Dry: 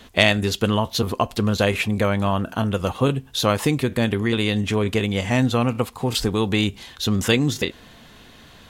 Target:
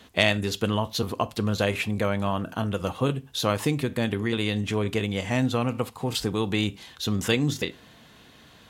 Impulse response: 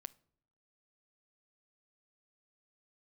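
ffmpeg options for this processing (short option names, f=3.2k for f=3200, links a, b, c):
-filter_complex "[0:a]highpass=62[a];[1:a]atrim=start_sample=2205,atrim=end_sample=4410,asetrate=48510,aresample=44100[b];[a][b]afir=irnorm=-1:irlink=0,volume=1.5dB"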